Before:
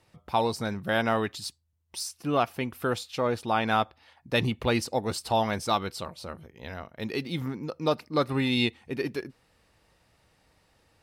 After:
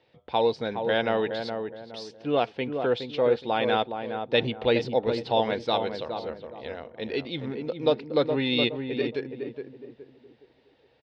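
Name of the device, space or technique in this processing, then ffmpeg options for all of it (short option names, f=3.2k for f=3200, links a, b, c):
guitar cabinet: -filter_complex "[0:a]highpass=95,equalizer=f=98:t=q:w=4:g=-9,equalizer=f=180:t=q:w=4:g=-9,equalizer=f=480:t=q:w=4:g=8,equalizer=f=1.2k:t=q:w=4:g=-9,equalizer=f=3.5k:t=q:w=4:g=5,lowpass=f=4.1k:w=0.5412,lowpass=f=4.1k:w=1.3066,asplit=2[a][b];[b]adelay=417,lowpass=f=1.1k:p=1,volume=-5.5dB,asplit=2[c][d];[d]adelay=417,lowpass=f=1.1k:p=1,volume=0.36,asplit=2[e][f];[f]adelay=417,lowpass=f=1.1k:p=1,volume=0.36,asplit=2[g][h];[h]adelay=417,lowpass=f=1.1k:p=1,volume=0.36[i];[a][c][e][g][i]amix=inputs=5:normalize=0"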